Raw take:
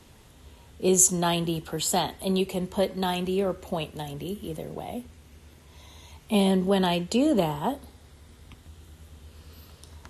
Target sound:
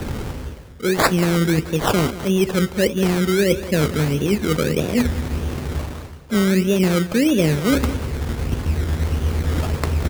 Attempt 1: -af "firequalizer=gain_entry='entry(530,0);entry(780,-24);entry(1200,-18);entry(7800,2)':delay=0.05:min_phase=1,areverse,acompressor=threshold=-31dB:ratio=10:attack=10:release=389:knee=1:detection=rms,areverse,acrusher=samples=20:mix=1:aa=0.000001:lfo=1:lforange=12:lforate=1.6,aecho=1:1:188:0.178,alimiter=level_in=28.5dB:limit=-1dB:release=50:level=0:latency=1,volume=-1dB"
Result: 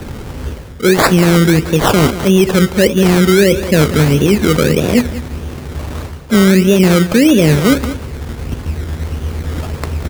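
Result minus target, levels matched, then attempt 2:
downward compressor: peak gain reduction −9.5 dB
-af "firequalizer=gain_entry='entry(530,0);entry(780,-24);entry(1200,-18);entry(7800,2)':delay=0.05:min_phase=1,areverse,acompressor=threshold=-41.5dB:ratio=10:attack=10:release=389:knee=1:detection=rms,areverse,acrusher=samples=20:mix=1:aa=0.000001:lfo=1:lforange=12:lforate=1.6,aecho=1:1:188:0.178,alimiter=level_in=28.5dB:limit=-1dB:release=50:level=0:latency=1,volume=-1dB"

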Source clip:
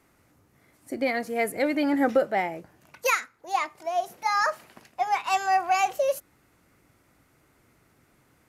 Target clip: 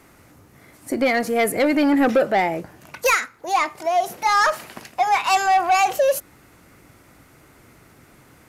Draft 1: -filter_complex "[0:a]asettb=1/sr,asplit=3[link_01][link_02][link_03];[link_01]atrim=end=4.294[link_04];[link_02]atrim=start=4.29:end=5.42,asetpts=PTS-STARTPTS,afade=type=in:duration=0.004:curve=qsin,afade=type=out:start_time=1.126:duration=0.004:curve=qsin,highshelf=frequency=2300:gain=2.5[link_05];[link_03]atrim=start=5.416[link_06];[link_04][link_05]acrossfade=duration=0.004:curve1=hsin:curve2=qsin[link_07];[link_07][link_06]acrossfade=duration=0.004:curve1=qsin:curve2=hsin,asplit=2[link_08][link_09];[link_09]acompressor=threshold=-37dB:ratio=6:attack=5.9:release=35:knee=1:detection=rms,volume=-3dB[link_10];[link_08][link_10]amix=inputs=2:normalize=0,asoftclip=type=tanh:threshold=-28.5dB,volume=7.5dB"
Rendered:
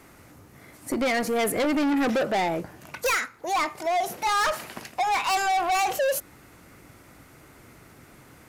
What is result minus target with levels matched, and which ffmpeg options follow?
soft clipping: distortion +9 dB
-filter_complex "[0:a]asettb=1/sr,asplit=3[link_01][link_02][link_03];[link_01]atrim=end=4.294[link_04];[link_02]atrim=start=4.29:end=5.42,asetpts=PTS-STARTPTS,afade=type=in:duration=0.004:curve=qsin,afade=type=out:start_time=1.126:duration=0.004:curve=qsin,highshelf=frequency=2300:gain=2.5[link_05];[link_03]atrim=start=5.416[link_06];[link_04][link_05]acrossfade=duration=0.004:curve1=hsin:curve2=qsin[link_07];[link_07][link_06]acrossfade=duration=0.004:curve1=qsin:curve2=hsin,asplit=2[link_08][link_09];[link_09]acompressor=threshold=-37dB:ratio=6:attack=5.9:release=35:knee=1:detection=rms,volume=-3dB[link_10];[link_08][link_10]amix=inputs=2:normalize=0,asoftclip=type=tanh:threshold=-18.5dB,volume=7.5dB"

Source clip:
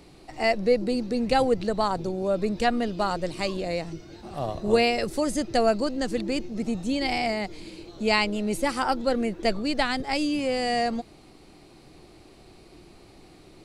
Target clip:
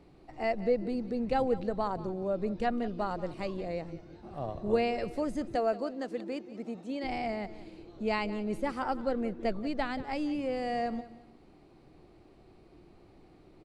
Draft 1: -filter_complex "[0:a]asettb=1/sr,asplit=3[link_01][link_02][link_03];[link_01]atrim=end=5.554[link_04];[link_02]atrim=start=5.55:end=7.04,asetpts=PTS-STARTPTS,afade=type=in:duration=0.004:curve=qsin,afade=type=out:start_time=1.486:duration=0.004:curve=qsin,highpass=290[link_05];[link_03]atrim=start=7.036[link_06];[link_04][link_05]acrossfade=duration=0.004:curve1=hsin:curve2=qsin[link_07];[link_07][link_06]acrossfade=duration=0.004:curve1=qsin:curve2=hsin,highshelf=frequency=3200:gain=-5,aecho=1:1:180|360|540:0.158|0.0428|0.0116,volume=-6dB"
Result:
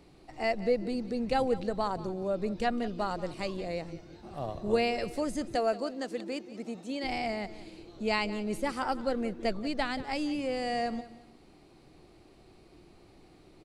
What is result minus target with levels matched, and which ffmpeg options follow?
8,000 Hz band +9.0 dB
-filter_complex "[0:a]asettb=1/sr,asplit=3[link_01][link_02][link_03];[link_01]atrim=end=5.554[link_04];[link_02]atrim=start=5.55:end=7.04,asetpts=PTS-STARTPTS,afade=type=in:duration=0.004:curve=qsin,afade=type=out:start_time=1.486:duration=0.004:curve=qsin,highpass=290[link_05];[link_03]atrim=start=7.036[link_06];[link_04][link_05]acrossfade=duration=0.004:curve1=hsin:curve2=qsin[link_07];[link_07][link_06]acrossfade=duration=0.004:curve1=qsin:curve2=hsin,highshelf=frequency=3200:gain=-16.5,aecho=1:1:180|360|540:0.158|0.0428|0.0116,volume=-6dB"

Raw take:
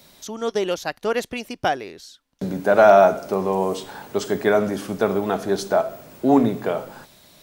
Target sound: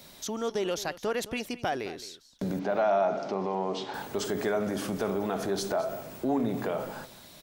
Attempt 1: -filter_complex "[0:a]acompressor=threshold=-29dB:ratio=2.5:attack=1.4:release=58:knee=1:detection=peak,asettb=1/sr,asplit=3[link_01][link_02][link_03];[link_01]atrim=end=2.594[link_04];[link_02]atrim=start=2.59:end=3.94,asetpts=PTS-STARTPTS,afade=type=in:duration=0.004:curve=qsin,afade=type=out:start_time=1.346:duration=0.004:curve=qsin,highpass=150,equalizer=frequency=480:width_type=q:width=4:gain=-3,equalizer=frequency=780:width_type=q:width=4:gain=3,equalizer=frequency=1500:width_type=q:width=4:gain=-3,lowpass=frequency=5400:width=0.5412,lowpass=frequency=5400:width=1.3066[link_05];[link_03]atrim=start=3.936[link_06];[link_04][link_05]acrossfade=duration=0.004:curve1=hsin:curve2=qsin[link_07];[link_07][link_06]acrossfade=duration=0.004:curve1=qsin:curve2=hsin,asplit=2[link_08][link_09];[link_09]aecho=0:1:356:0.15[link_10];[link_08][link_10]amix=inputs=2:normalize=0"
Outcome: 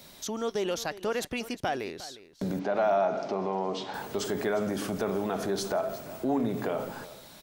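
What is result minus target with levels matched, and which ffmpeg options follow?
echo 141 ms late
-filter_complex "[0:a]acompressor=threshold=-29dB:ratio=2.5:attack=1.4:release=58:knee=1:detection=peak,asettb=1/sr,asplit=3[link_01][link_02][link_03];[link_01]atrim=end=2.594[link_04];[link_02]atrim=start=2.59:end=3.94,asetpts=PTS-STARTPTS,afade=type=in:duration=0.004:curve=qsin,afade=type=out:start_time=1.346:duration=0.004:curve=qsin,highpass=150,equalizer=frequency=480:width_type=q:width=4:gain=-3,equalizer=frequency=780:width_type=q:width=4:gain=3,equalizer=frequency=1500:width_type=q:width=4:gain=-3,lowpass=frequency=5400:width=0.5412,lowpass=frequency=5400:width=1.3066[link_05];[link_03]atrim=start=3.936[link_06];[link_04][link_05]acrossfade=duration=0.004:curve1=hsin:curve2=qsin[link_07];[link_07][link_06]acrossfade=duration=0.004:curve1=qsin:curve2=hsin,asplit=2[link_08][link_09];[link_09]aecho=0:1:215:0.15[link_10];[link_08][link_10]amix=inputs=2:normalize=0"

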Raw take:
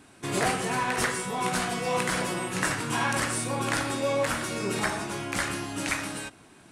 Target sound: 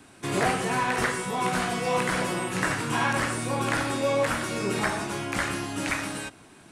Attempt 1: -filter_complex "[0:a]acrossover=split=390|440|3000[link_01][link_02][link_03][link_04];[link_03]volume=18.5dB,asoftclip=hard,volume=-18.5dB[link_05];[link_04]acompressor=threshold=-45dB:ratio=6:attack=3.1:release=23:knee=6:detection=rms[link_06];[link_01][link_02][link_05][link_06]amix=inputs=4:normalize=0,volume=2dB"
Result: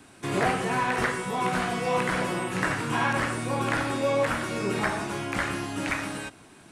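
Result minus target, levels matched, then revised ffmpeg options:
downward compressor: peak gain reduction +6 dB
-filter_complex "[0:a]acrossover=split=390|440|3000[link_01][link_02][link_03][link_04];[link_03]volume=18.5dB,asoftclip=hard,volume=-18.5dB[link_05];[link_04]acompressor=threshold=-38dB:ratio=6:attack=3.1:release=23:knee=6:detection=rms[link_06];[link_01][link_02][link_05][link_06]amix=inputs=4:normalize=0,volume=2dB"

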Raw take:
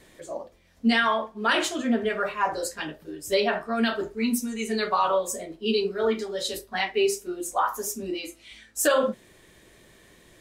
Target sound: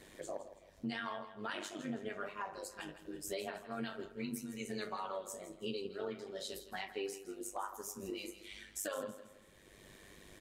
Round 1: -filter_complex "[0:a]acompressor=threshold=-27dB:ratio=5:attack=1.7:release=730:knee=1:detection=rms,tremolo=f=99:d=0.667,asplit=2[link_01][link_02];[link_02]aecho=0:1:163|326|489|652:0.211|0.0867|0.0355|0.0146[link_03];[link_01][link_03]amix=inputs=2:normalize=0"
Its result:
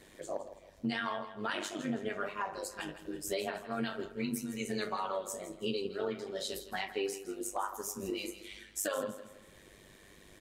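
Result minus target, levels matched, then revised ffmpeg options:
downward compressor: peak gain reduction −5.5 dB
-filter_complex "[0:a]acompressor=threshold=-34dB:ratio=5:attack=1.7:release=730:knee=1:detection=rms,tremolo=f=99:d=0.667,asplit=2[link_01][link_02];[link_02]aecho=0:1:163|326|489|652:0.211|0.0867|0.0355|0.0146[link_03];[link_01][link_03]amix=inputs=2:normalize=0"

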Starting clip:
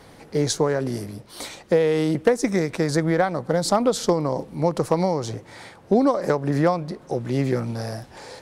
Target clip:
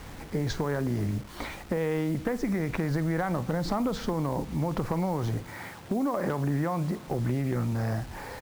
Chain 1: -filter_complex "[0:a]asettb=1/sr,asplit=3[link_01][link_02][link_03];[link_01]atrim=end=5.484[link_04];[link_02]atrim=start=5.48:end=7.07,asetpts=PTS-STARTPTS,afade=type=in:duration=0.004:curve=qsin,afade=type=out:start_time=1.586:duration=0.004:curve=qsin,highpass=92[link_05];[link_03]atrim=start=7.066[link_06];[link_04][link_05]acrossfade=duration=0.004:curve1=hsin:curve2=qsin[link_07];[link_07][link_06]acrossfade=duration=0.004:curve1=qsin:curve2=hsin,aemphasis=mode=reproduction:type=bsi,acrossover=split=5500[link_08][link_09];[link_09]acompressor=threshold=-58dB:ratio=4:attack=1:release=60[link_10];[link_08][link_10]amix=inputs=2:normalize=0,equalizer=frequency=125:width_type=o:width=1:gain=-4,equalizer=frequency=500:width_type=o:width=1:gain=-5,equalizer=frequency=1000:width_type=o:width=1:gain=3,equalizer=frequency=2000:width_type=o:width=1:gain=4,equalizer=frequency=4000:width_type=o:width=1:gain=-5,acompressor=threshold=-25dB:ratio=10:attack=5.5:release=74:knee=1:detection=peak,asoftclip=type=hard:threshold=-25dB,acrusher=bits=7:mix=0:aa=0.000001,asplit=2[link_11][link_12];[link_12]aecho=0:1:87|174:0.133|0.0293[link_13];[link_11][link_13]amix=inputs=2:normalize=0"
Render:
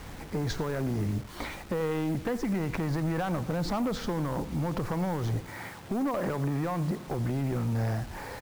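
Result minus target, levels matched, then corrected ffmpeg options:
echo 38 ms late; hard clipping: distortion +17 dB
-filter_complex "[0:a]asettb=1/sr,asplit=3[link_01][link_02][link_03];[link_01]atrim=end=5.484[link_04];[link_02]atrim=start=5.48:end=7.07,asetpts=PTS-STARTPTS,afade=type=in:duration=0.004:curve=qsin,afade=type=out:start_time=1.586:duration=0.004:curve=qsin,highpass=92[link_05];[link_03]atrim=start=7.066[link_06];[link_04][link_05]acrossfade=duration=0.004:curve1=hsin:curve2=qsin[link_07];[link_07][link_06]acrossfade=duration=0.004:curve1=qsin:curve2=hsin,aemphasis=mode=reproduction:type=bsi,acrossover=split=5500[link_08][link_09];[link_09]acompressor=threshold=-58dB:ratio=4:attack=1:release=60[link_10];[link_08][link_10]amix=inputs=2:normalize=0,equalizer=frequency=125:width_type=o:width=1:gain=-4,equalizer=frequency=500:width_type=o:width=1:gain=-5,equalizer=frequency=1000:width_type=o:width=1:gain=3,equalizer=frequency=2000:width_type=o:width=1:gain=4,equalizer=frequency=4000:width_type=o:width=1:gain=-5,acompressor=threshold=-25dB:ratio=10:attack=5.5:release=74:knee=1:detection=peak,asoftclip=type=hard:threshold=-18.5dB,acrusher=bits=7:mix=0:aa=0.000001,asplit=2[link_11][link_12];[link_12]aecho=0:1:49|98:0.133|0.0293[link_13];[link_11][link_13]amix=inputs=2:normalize=0"

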